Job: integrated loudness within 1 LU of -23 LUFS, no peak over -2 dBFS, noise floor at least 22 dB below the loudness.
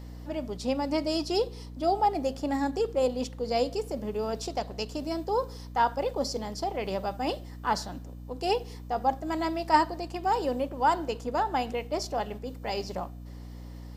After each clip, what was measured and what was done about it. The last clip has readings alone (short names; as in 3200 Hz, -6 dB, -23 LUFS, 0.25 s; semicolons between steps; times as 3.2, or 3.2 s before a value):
hum 60 Hz; harmonics up to 300 Hz; hum level -40 dBFS; loudness -30.0 LUFS; peak -9.5 dBFS; loudness target -23.0 LUFS
-> notches 60/120/180/240/300 Hz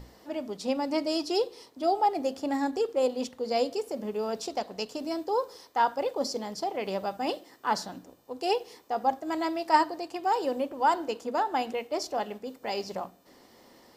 hum none; loudness -30.0 LUFS; peak -10.0 dBFS; loudness target -23.0 LUFS
-> gain +7 dB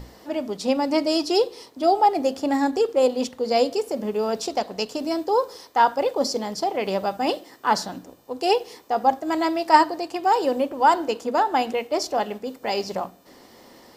loudness -23.0 LUFS; peak -3.0 dBFS; noise floor -51 dBFS